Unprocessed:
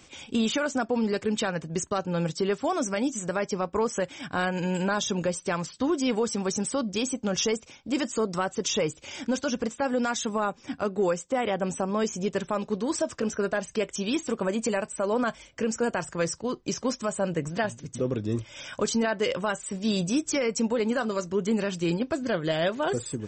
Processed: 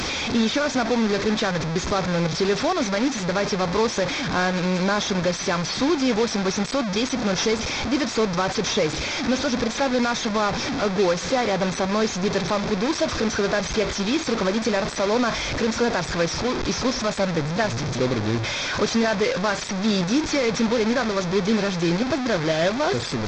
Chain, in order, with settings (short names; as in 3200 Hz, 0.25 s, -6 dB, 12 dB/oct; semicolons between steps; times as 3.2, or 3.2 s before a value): delta modulation 32 kbps, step -24 dBFS; notch 2900 Hz, Q 7.7; gain +4.5 dB